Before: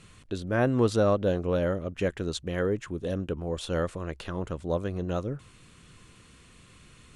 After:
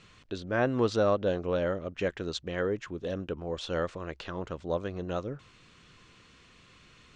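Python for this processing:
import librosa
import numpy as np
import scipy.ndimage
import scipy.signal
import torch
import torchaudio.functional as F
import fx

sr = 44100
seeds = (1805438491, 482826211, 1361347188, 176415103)

y = scipy.signal.sosfilt(scipy.signal.butter(4, 6200.0, 'lowpass', fs=sr, output='sos'), x)
y = fx.low_shelf(y, sr, hz=280.0, db=-7.5)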